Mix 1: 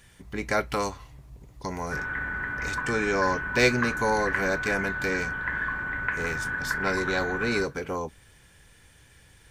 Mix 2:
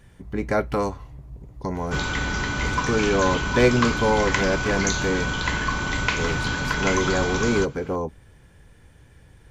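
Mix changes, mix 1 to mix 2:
speech: add tilt shelf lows +7 dB, about 1300 Hz; background: remove ladder low-pass 1800 Hz, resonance 80%

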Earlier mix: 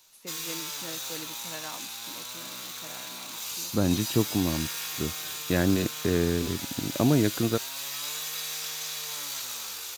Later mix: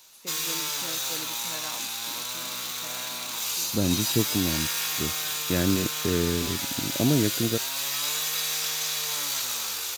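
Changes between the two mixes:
second voice: add bell 1100 Hz -11.5 dB 0.83 oct; background +6.0 dB

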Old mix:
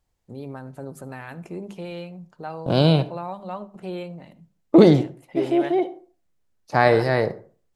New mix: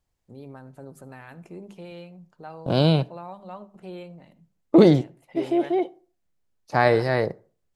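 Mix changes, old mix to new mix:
first voice -6.5 dB; second voice: send -11.5 dB

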